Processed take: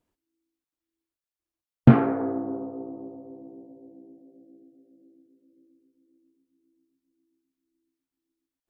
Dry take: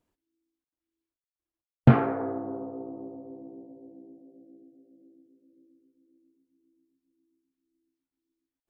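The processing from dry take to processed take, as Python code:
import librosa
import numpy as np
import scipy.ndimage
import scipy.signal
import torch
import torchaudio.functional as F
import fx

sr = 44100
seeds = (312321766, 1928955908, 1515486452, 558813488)

y = fx.dynamic_eq(x, sr, hz=260.0, q=1.2, threshold_db=-39.0, ratio=4.0, max_db=6)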